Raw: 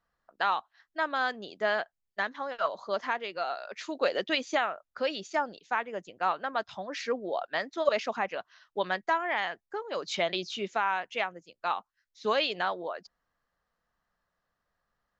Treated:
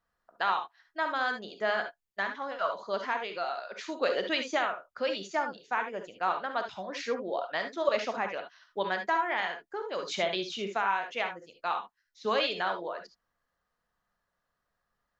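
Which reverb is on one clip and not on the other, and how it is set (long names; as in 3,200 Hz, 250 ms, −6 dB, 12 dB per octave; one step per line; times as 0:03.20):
reverb whose tail is shaped and stops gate 90 ms rising, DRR 5.5 dB
level −1.5 dB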